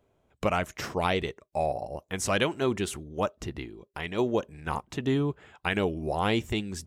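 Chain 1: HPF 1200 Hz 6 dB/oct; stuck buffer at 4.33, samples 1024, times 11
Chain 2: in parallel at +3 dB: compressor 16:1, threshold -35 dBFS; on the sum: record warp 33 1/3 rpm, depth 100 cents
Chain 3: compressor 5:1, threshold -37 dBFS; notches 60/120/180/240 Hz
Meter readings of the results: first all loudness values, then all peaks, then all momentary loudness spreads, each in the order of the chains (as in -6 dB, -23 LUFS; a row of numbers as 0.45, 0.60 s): -35.5, -27.5, -41.0 LUFS; -12.5, -9.0, -19.5 dBFS; 10, 7, 5 LU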